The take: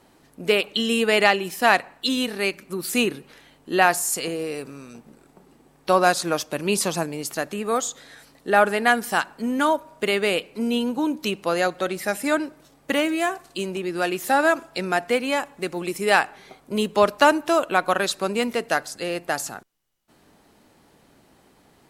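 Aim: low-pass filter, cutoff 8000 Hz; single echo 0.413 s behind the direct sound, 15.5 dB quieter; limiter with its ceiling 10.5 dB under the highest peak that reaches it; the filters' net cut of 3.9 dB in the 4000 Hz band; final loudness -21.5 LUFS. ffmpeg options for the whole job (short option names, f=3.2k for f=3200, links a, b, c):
-af "lowpass=8k,equalizer=f=4k:t=o:g=-5.5,alimiter=limit=-13.5dB:level=0:latency=1,aecho=1:1:413:0.168,volume=5dB"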